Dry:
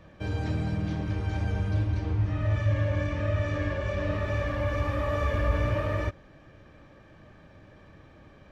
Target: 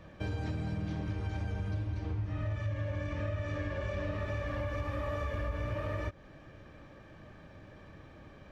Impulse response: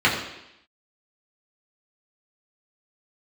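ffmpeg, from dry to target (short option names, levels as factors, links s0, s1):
-af "acompressor=threshold=0.0251:ratio=6"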